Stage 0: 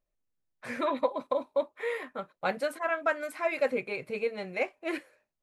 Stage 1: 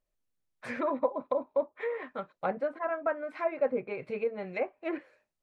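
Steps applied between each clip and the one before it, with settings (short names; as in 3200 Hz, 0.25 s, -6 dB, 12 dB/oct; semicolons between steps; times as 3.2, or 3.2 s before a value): treble ducked by the level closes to 1100 Hz, closed at -28 dBFS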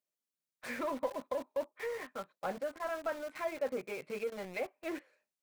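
HPF 150 Hz 24 dB/oct; high shelf 3000 Hz +9 dB; in parallel at -11 dB: companded quantiser 2-bit; on the sum: gain -9 dB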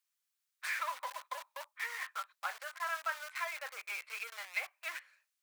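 HPF 1100 Hz 24 dB/oct; gain +6.5 dB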